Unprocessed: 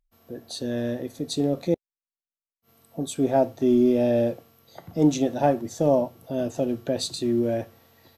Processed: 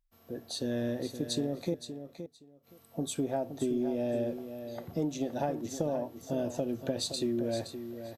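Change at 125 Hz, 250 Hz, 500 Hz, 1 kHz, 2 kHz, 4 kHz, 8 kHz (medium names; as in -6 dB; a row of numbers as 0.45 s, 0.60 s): -8.0 dB, -9.0 dB, -9.5 dB, -10.5 dB, -7.0 dB, -3.5 dB, -4.0 dB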